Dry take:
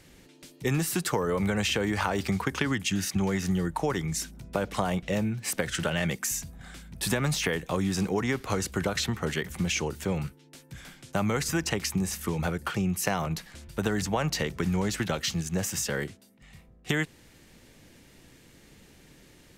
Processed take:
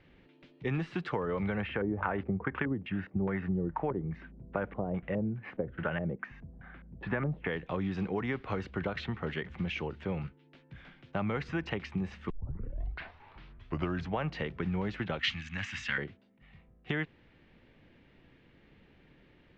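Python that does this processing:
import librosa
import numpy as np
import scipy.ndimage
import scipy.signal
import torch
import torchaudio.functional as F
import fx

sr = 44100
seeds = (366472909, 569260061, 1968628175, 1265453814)

y = fx.filter_lfo_lowpass(x, sr, shape='square', hz=2.4, low_hz=490.0, high_hz=1700.0, q=1.4, at=(1.61, 7.47))
y = fx.curve_eq(y, sr, hz=(110.0, 170.0, 250.0, 410.0, 940.0, 2100.0, 5200.0, 7500.0, 12000.0), db=(0, -9, 1, -21, 0, 13, 8, 13, -7), at=(15.19, 15.98))
y = fx.edit(y, sr, fx.tape_start(start_s=12.3, length_s=1.89), tone=tone)
y = scipy.signal.sosfilt(scipy.signal.butter(4, 3100.0, 'lowpass', fs=sr, output='sos'), y)
y = F.gain(torch.from_numpy(y), -5.5).numpy()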